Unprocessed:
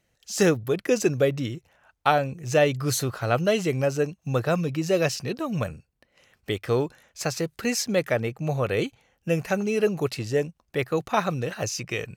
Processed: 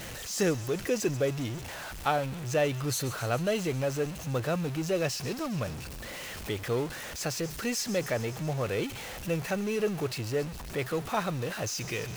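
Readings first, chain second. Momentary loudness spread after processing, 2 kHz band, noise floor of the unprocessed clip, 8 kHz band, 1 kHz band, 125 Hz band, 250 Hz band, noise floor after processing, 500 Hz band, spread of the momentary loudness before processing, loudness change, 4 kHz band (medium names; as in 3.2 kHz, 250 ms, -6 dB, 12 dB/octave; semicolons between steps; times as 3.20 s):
7 LU, -5.0 dB, -73 dBFS, -3.0 dB, -6.0 dB, -4.5 dB, -5.5 dB, -41 dBFS, -6.0 dB, 9 LU, -5.5 dB, -3.0 dB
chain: jump at every zero crossing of -26.5 dBFS; on a send: feedback echo behind a high-pass 136 ms, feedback 76%, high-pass 2.8 kHz, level -12.5 dB; on the sum: trim -8 dB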